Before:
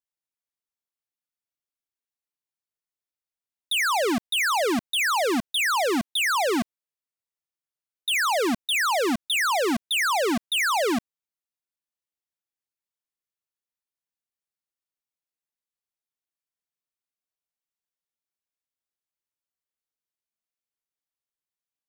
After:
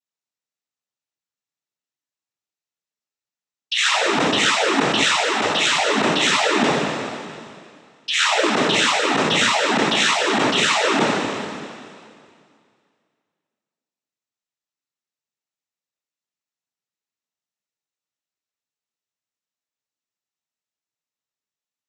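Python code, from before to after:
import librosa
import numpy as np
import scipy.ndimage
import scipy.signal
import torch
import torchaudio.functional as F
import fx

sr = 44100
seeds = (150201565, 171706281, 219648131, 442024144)

y = fx.spec_trails(x, sr, decay_s=2.21)
y = fx.peak_eq(y, sr, hz=240.0, db=-10.5, octaves=0.95, at=(5.03, 5.74))
y = fx.noise_vocoder(y, sr, seeds[0], bands=12)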